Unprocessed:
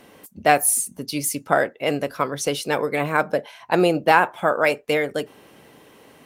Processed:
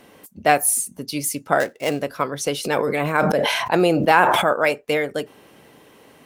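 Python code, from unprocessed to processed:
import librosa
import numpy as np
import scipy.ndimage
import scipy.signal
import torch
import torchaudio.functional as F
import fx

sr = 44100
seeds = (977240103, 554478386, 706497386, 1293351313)

y = fx.dead_time(x, sr, dead_ms=0.1, at=(1.6, 2.02))
y = fx.sustainer(y, sr, db_per_s=26.0, at=(2.63, 4.52), fade=0.02)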